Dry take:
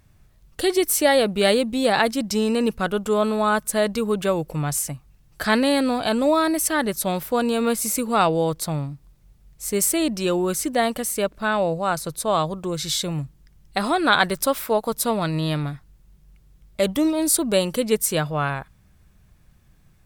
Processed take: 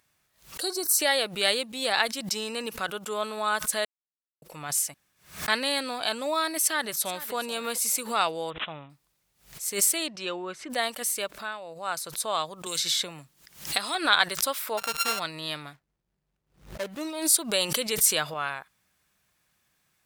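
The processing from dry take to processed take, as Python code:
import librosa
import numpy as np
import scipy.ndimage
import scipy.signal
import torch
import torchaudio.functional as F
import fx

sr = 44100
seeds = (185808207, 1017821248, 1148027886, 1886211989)

y = fx.spec_box(x, sr, start_s=0.61, length_s=0.38, low_hz=1700.0, high_hz=3800.0, gain_db=-17)
y = fx.echo_throw(y, sr, start_s=6.62, length_s=0.72, ms=430, feedback_pct=30, wet_db=-16.0)
y = fx.resample_bad(y, sr, factor=6, down='none', up='filtered', at=(8.5, 8.9))
y = fx.lowpass(y, sr, hz=fx.line((10.06, 5200.0), (10.69, 2200.0)), slope=12, at=(10.06, 10.69), fade=0.02)
y = fx.band_squash(y, sr, depth_pct=100, at=(12.66, 13.95))
y = fx.sample_sort(y, sr, block=32, at=(14.77, 15.18), fade=0.02)
y = fx.median_filter(y, sr, points=41, at=(15.73, 17.01))
y = fx.env_flatten(y, sr, amount_pct=50, at=(17.51, 18.34))
y = fx.edit(y, sr, fx.silence(start_s=3.85, length_s=0.57),
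    fx.room_tone_fill(start_s=4.94, length_s=0.54),
    fx.fade_down_up(start_s=11.23, length_s=0.76, db=-11.0, fade_s=0.38), tone=tone)
y = fx.highpass(y, sr, hz=1400.0, slope=6)
y = fx.dynamic_eq(y, sr, hz=4100.0, q=0.79, threshold_db=-34.0, ratio=4.0, max_db=3)
y = fx.pre_swell(y, sr, db_per_s=140.0)
y = y * librosa.db_to_amplitude(-2.0)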